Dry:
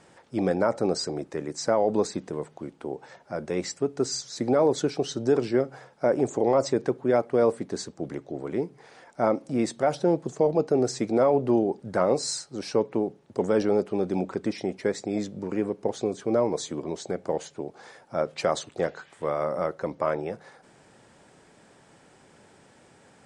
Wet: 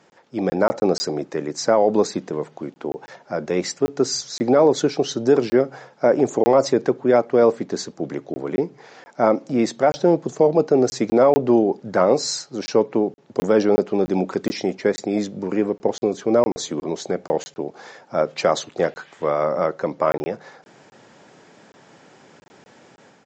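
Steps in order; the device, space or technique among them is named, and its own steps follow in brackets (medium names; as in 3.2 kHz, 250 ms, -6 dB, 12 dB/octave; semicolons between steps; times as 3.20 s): call with lost packets (high-pass 140 Hz 12 dB/octave; resampled via 16 kHz; level rider gain up to 7 dB; lost packets of 20 ms random); 14.28–14.75 s: treble shelf 4.8 kHz +7.5 dB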